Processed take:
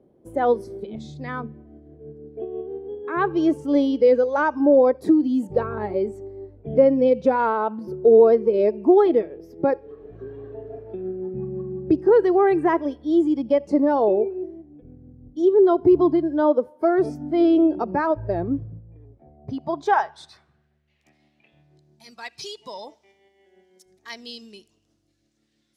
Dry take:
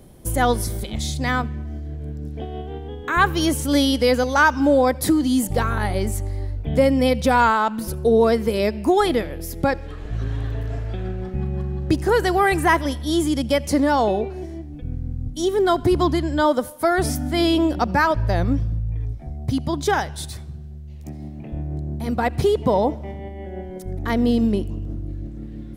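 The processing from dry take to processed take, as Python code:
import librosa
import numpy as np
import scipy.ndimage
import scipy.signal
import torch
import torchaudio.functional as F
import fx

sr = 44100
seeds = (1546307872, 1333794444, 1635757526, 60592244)

y = fx.noise_reduce_blind(x, sr, reduce_db=10)
y = fx.filter_sweep_bandpass(y, sr, from_hz=400.0, to_hz=5800.0, start_s=19.03, end_s=22.1, q=1.5)
y = fx.dynamic_eq(y, sr, hz=220.0, q=1.4, threshold_db=-36.0, ratio=4.0, max_db=-4)
y = y * librosa.db_to_amplitude(5.5)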